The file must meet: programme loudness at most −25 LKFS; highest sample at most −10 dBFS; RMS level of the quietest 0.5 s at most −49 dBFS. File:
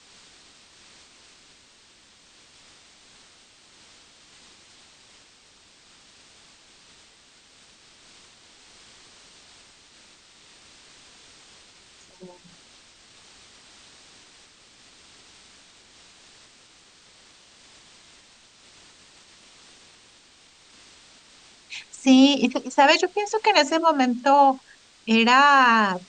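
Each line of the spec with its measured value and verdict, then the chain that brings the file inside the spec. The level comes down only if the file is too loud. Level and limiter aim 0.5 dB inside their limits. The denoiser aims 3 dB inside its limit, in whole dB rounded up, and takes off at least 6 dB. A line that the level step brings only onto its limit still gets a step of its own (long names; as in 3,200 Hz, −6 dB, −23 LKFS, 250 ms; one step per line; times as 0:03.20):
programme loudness −18.5 LKFS: out of spec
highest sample −5.0 dBFS: out of spec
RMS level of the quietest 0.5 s −55 dBFS: in spec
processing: level −7 dB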